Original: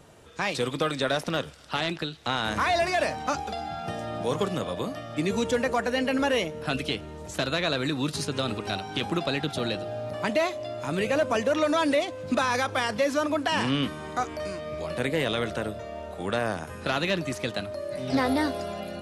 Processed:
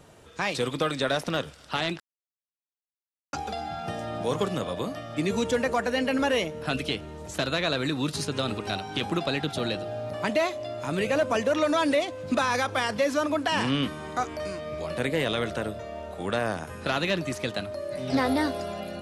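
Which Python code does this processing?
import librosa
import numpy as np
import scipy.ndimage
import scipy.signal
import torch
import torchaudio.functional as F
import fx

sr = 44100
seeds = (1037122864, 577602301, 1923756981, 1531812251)

y = fx.edit(x, sr, fx.silence(start_s=2.0, length_s=1.33), tone=tone)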